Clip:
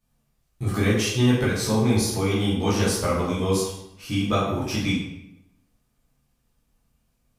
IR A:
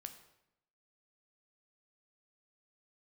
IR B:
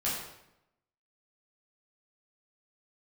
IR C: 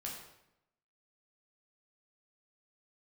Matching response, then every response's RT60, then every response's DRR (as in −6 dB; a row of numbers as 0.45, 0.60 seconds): B; 0.85, 0.85, 0.85 seconds; 6.5, −8.5, −3.0 decibels